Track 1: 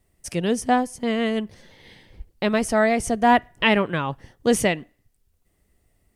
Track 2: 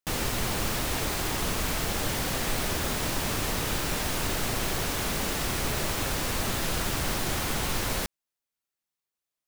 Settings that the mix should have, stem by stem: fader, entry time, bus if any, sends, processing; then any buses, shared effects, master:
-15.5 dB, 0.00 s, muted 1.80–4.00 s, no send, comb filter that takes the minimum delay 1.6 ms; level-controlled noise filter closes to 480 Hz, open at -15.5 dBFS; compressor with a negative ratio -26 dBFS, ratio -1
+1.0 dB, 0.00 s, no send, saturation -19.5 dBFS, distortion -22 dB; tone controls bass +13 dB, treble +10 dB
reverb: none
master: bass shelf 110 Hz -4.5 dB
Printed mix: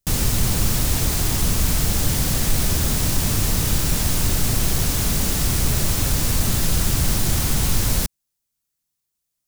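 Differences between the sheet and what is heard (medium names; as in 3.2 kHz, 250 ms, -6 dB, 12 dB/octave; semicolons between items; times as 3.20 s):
stem 1 -15.5 dB -> -22.0 dB; master: missing bass shelf 110 Hz -4.5 dB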